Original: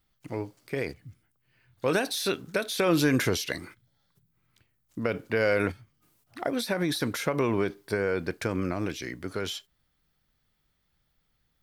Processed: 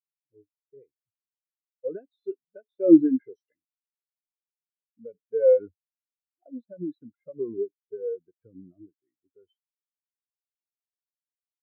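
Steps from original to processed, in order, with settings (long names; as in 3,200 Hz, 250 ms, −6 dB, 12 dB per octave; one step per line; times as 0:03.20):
0:03.02–0:03.51: low-shelf EQ 140 Hz −10.5 dB
every bin expanded away from the loudest bin 4 to 1
level +6.5 dB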